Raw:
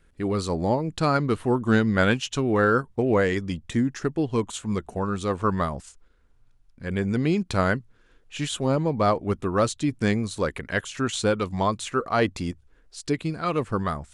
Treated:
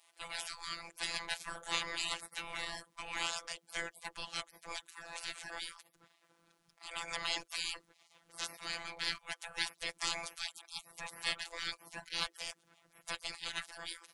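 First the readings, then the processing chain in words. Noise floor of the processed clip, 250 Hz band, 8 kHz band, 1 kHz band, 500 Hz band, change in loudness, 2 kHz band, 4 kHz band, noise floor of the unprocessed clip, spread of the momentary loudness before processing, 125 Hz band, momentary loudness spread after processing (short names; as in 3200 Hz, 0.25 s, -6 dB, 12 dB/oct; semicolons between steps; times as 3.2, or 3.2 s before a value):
-74 dBFS, -33.5 dB, -6.0 dB, -17.5 dB, -27.5 dB, -15.0 dB, -10.0 dB, -2.0 dB, -59 dBFS, 8 LU, -34.5 dB, 9 LU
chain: spectral gate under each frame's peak -30 dB weak; robotiser 168 Hz; gain +9.5 dB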